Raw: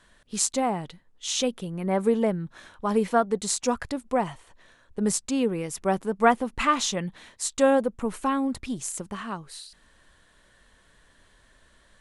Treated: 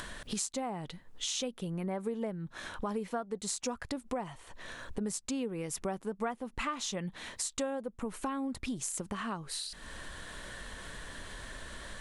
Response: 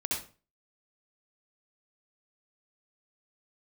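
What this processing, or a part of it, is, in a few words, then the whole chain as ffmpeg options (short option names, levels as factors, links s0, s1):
upward and downward compression: -af "acompressor=mode=upward:threshold=0.0501:ratio=2.5,acompressor=threshold=0.0316:ratio=6,volume=0.75"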